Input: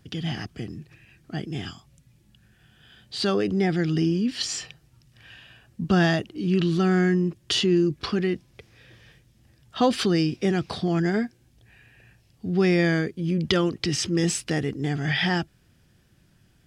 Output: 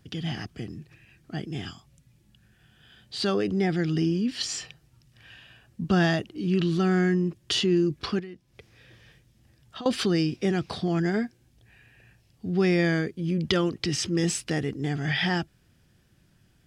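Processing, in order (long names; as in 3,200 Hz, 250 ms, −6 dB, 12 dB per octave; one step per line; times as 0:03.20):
0:08.19–0:09.86: downward compressor 8 to 1, threshold −36 dBFS, peak gain reduction 20 dB
level −2 dB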